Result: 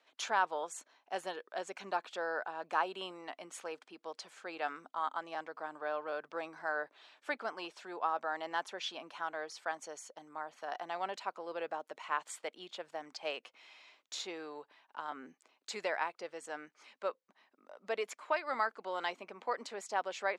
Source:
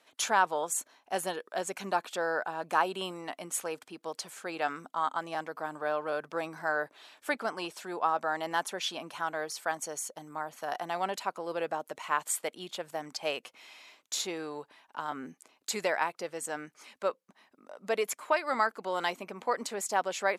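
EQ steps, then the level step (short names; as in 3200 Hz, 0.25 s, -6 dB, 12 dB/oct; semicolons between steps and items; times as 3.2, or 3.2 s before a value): BPF 240–5100 Hz; low shelf 340 Hz -3.5 dB; -5.0 dB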